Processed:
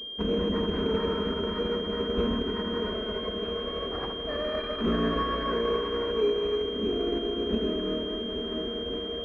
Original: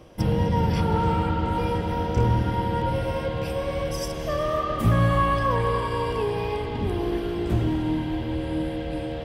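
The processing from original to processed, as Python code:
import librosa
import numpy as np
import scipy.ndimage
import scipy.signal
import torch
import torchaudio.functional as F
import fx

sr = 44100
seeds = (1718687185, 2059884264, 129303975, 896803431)

y = fx.lower_of_two(x, sr, delay_ms=4.6)
y = fx.highpass(y, sr, hz=120.0, slope=6)
y = fx.fixed_phaser(y, sr, hz=340.0, stages=4)
y = fx.pwm(y, sr, carrier_hz=3200.0)
y = F.gain(torch.from_numpy(y), 3.0).numpy()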